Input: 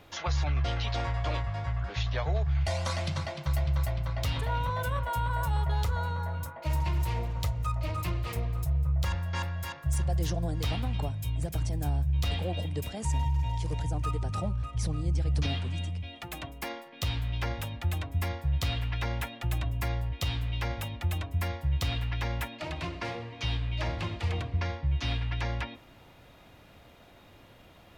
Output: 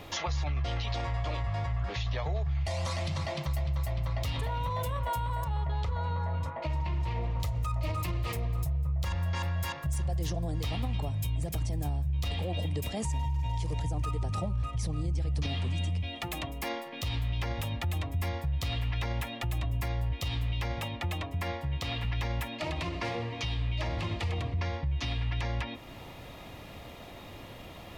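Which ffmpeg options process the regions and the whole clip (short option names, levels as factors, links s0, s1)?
-filter_complex "[0:a]asettb=1/sr,asplit=3[s0][s1][s2];[s0]atrim=end=5.444[s3];[s1]atrim=start=5.44:end=7.4,asetpts=PTS-STARTPTS,afade=t=in:d=0.004:c=qsin,afade=t=out:st=1.956:d=0.004:c=qsin,lowpass=3900,acompressor=threshold=0.0251:ratio=2.5:attack=3.2:release=140:knee=1:detection=peak[s4];[s2]atrim=start=7.396[s5];[s3][s4]acrossfade=d=0.004:c1=hsin:c2=qsin[s6];[s6][s5]acrossfade=d=0.004:c1=qsin:c2=hsin,asettb=1/sr,asplit=3[s7][s8][s9];[s7]atrim=end=20.794[s10];[s8]atrim=start=20.79:end=22.05,asetpts=PTS-STARTPTS,afade=t=in:d=0.004:c=qsin,afade=t=out:st=1.256:d=0.004:c=qsin,highpass=f=190:p=1,highshelf=f=7000:g=-11[s11];[s9]atrim=start=22.046[s12];[s10][s11]acrossfade=d=0.004:c1=hsin:c2=qsin[s13];[s13][s12]acrossfade=d=0.004:c1=qsin:c2=hsin,bandreject=f=1500:w=6.8,acompressor=threshold=0.00501:ratio=1.5,alimiter=level_in=2.82:limit=0.0631:level=0:latency=1:release=57,volume=0.355,volume=2.82"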